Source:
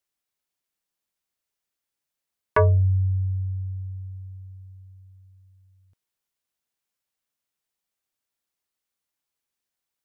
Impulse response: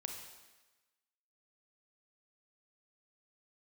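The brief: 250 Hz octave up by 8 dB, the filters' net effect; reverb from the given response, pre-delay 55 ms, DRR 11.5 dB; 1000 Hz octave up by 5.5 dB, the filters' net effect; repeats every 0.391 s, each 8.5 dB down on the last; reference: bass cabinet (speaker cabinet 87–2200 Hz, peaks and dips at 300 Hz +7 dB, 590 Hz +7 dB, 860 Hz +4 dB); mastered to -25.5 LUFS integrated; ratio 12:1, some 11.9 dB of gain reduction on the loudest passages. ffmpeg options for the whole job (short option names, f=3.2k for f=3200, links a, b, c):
-filter_complex "[0:a]equalizer=f=250:t=o:g=7.5,equalizer=f=1k:t=o:g=3.5,acompressor=threshold=-24dB:ratio=12,aecho=1:1:391|782|1173|1564:0.376|0.143|0.0543|0.0206,asplit=2[a][b];[1:a]atrim=start_sample=2205,adelay=55[c];[b][c]afir=irnorm=-1:irlink=0,volume=-10dB[d];[a][d]amix=inputs=2:normalize=0,highpass=f=87:w=0.5412,highpass=f=87:w=1.3066,equalizer=f=300:t=q:w=4:g=7,equalizer=f=590:t=q:w=4:g=7,equalizer=f=860:t=q:w=4:g=4,lowpass=f=2.2k:w=0.5412,lowpass=f=2.2k:w=1.3066,volume=3dB"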